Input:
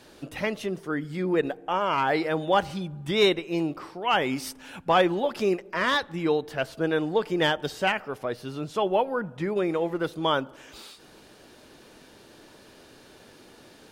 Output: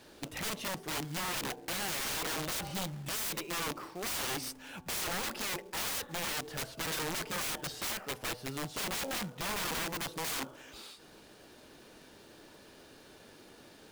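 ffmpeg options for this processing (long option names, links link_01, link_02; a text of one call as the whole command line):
ffmpeg -i in.wav -af "aeval=exprs='(mod(22.4*val(0)+1,2)-1)/22.4':channel_layout=same,acrusher=bits=3:mode=log:mix=0:aa=0.000001,bandreject=frequency=124.8:width_type=h:width=4,bandreject=frequency=249.6:width_type=h:width=4,bandreject=frequency=374.4:width_type=h:width=4,bandreject=frequency=499.2:width_type=h:width=4,bandreject=frequency=624:width_type=h:width=4,bandreject=frequency=748.8:width_type=h:width=4,bandreject=frequency=873.6:width_type=h:width=4,bandreject=frequency=998.4:width_type=h:width=4,bandreject=frequency=1123.2:width_type=h:width=4,volume=-4dB" out.wav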